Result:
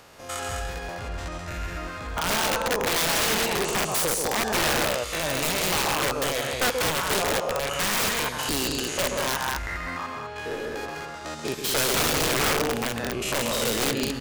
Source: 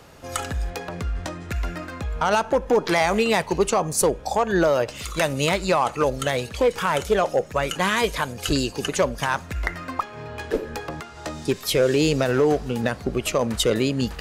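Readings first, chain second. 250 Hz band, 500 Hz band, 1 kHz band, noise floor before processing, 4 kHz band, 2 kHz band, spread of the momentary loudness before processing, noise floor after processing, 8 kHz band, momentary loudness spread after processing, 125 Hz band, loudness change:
-6.0 dB, -6.5 dB, -3.0 dB, -40 dBFS, +3.0 dB, +0.5 dB, 11 LU, -36 dBFS, +4.0 dB, 12 LU, -6.0 dB, -2.0 dB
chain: stepped spectrum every 0.1 s; low shelf 450 Hz -9 dB; loudspeakers at several distances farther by 46 m -6 dB, 70 m -5 dB; wrapped overs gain 20 dB; gain +2 dB

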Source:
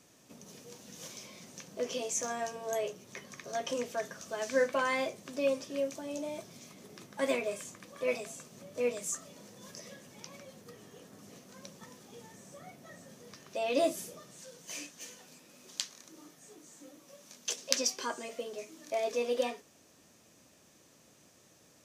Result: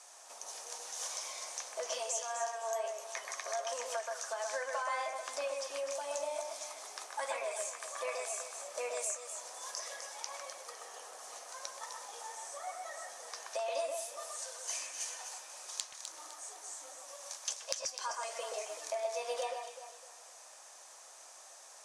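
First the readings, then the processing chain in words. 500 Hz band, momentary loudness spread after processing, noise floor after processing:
-5.0 dB, 11 LU, -55 dBFS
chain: elliptic band-pass 760–9800 Hz, stop band 60 dB; bell 2700 Hz -11 dB 1.8 oct; compressor 6:1, threshold -50 dBFS, peak gain reduction 20.5 dB; on a send: echo with dull and thin repeats by turns 0.127 s, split 2500 Hz, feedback 58%, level -3 dB; on the sum: gain +14 dB

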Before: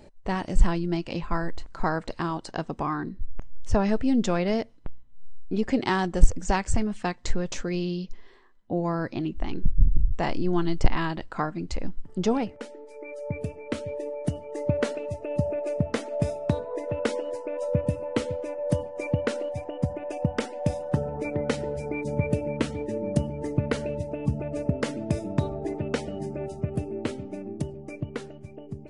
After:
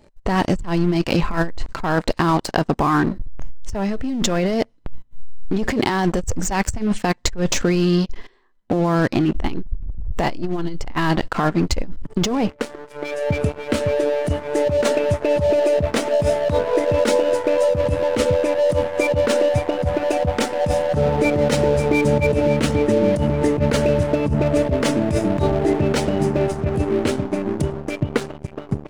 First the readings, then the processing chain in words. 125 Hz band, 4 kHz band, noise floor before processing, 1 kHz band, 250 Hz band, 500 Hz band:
+7.0 dB, +11.0 dB, -48 dBFS, +8.5 dB, +8.0 dB, +11.0 dB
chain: sample leveller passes 3; negative-ratio compressor -18 dBFS, ratio -1

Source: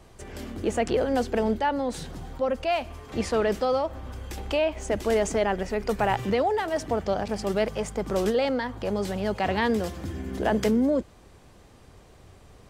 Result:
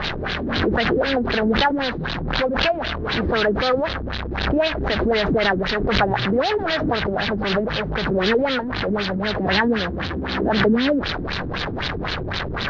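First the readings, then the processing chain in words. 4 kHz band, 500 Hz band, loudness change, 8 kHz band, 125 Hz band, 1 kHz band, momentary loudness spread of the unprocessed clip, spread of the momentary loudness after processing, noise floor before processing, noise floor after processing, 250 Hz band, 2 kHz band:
+14.0 dB, +4.0 dB, +5.5 dB, n/a, +9.0 dB, +5.0 dB, 9 LU, 7 LU, -52 dBFS, -27 dBFS, +6.0 dB, +12.0 dB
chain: delta modulation 32 kbps, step -23 dBFS; fifteen-band EQ 160 Hz +5 dB, 1600 Hz +8 dB, 4000 Hz +7 dB; LFO low-pass sine 3.9 Hz 290–4000 Hz; backwards sustainer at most 36 dB/s

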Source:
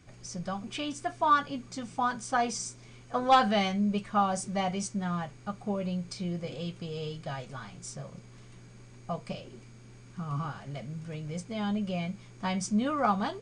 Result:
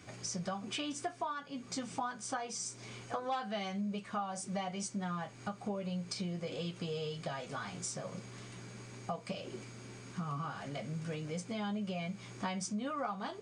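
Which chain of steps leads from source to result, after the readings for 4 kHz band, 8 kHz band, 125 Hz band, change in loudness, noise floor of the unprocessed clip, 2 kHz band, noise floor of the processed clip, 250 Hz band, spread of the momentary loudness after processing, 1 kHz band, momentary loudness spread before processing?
-5.0 dB, -2.0 dB, -6.0 dB, -8.5 dB, -52 dBFS, -8.0 dB, -52 dBFS, -7.5 dB, 8 LU, -10.5 dB, 16 LU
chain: HPF 220 Hz 6 dB/oct; compressor 6:1, threshold -43 dBFS, peak gain reduction 23.5 dB; flange 0.34 Hz, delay 9.7 ms, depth 2 ms, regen -46%; gain +10.5 dB

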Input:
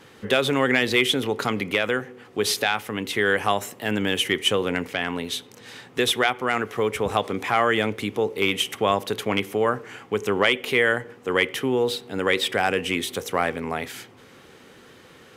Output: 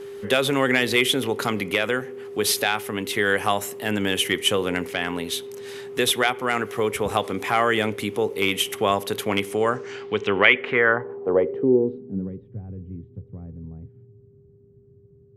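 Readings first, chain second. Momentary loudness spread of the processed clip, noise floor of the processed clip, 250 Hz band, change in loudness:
17 LU, -53 dBFS, +0.5 dB, +1.0 dB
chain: whine 400 Hz -34 dBFS; low-pass sweep 12000 Hz -> 120 Hz, 9.38–12.49

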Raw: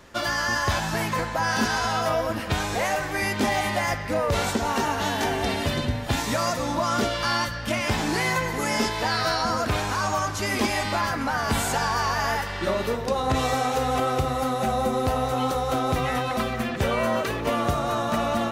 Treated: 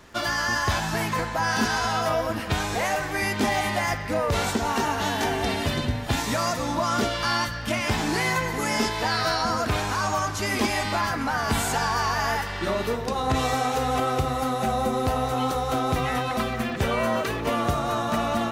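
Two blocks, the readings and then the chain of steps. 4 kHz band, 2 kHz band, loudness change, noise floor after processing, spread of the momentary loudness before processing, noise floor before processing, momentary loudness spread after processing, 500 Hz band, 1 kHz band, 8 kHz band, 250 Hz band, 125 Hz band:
0.0 dB, 0.0 dB, 0.0 dB, -31 dBFS, 3 LU, -31 dBFS, 3 LU, -1.0 dB, 0.0 dB, 0.0 dB, 0.0 dB, 0.0 dB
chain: notch 550 Hz, Q 12; crackle 42/s -41 dBFS

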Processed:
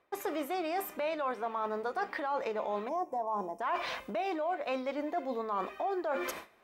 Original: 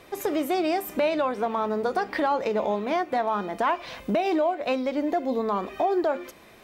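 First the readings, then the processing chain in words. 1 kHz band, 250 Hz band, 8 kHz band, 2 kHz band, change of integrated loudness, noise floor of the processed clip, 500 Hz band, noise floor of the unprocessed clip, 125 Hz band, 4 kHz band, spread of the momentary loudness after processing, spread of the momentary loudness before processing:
-7.0 dB, -12.0 dB, n/a, -6.5 dB, -8.5 dB, -56 dBFS, -9.0 dB, -51 dBFS, under -10 dB, -7.5 dB, 2 LU, 4 LU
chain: gate with hold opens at -37 dBFS; spectral gain 2.88–3.61, 1100–5100 Hz -21 dB; EQ curve 140 Hz 0 dB, 1200 Hz +13 dB, 4300 Hz +7 dB; reverse; compressor 6:1, threshold -33 dBFS, peak gain reduction 22 dB; reverse; mismatched tape noise reduction decoder only

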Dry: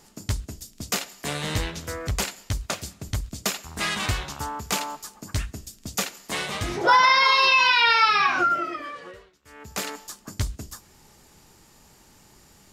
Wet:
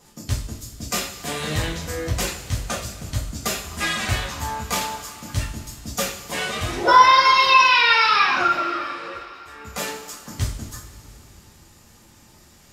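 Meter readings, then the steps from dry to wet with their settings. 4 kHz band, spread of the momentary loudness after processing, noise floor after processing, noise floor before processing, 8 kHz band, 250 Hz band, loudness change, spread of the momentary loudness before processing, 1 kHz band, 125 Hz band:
+2.0 dB, 21 LU, -51 dBFS, -55 dBFS, +2.5 dB, +3.0 dB, +3.0 dB, 21 LU, +4.5 dB, +3.5 dB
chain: bin magnitudes rounded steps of 15 dB; two-slope reverb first 0.39 s, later 3.5 s, from -18 dB, DRR -4 dB; gain -2 dB

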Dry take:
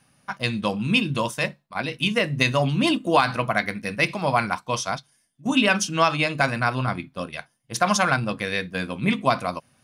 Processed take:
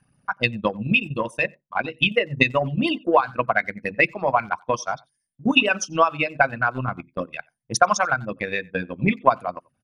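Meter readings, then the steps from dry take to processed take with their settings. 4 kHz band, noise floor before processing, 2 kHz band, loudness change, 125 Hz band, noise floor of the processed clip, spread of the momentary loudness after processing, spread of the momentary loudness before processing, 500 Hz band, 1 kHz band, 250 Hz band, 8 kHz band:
-1.5 dB, -66 dBFS, +2.0 dB, +1.0 dB, -3.0 dB, -76 dBFS, 11 LU, 11 LU, +2.0 dB, +1.5 dB, -1.5 dB, -1.5 dB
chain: formant sharpening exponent 2; speakerphone echo 90 ms, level -17 dB; transient shaper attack +9 dB, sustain -8 dB; gain -3 dB

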